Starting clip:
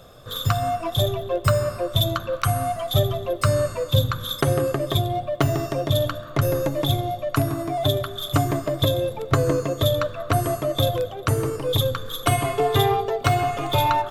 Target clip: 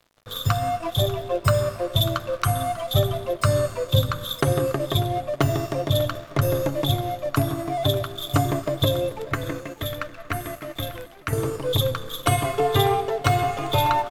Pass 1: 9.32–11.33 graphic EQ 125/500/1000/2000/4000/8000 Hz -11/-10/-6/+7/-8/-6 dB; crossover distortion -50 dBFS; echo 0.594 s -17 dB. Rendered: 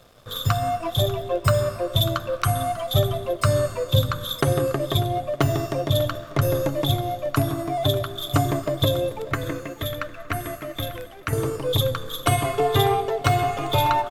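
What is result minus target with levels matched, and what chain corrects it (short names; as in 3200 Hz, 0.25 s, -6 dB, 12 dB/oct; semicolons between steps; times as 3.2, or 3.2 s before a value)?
crossover distortion: distortion -8 dB
9.32–11.33 graphic EQ 125/500/1000/2000/4000/8000 Hz -11/-10/-6/+7/-8/-6 dB; crossover distortion -42 dBFS; echo 0.594 s -17 dB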